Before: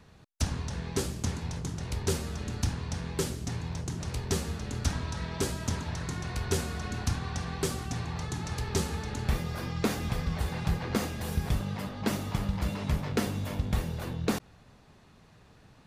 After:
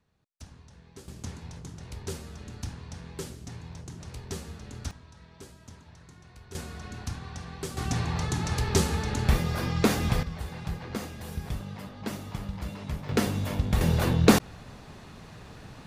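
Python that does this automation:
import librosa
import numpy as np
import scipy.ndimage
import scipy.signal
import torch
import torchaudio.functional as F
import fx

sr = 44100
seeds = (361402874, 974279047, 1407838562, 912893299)

y = fx.gain(x, sr, db=fx.steps((0.0, -17.5), (1.08, -7.0), (4.91, -17.0), (6.55, -5.5), (7.77, 5.5), (10.23, -5.0), (13.09, 3.5), (13.81, 11.0)))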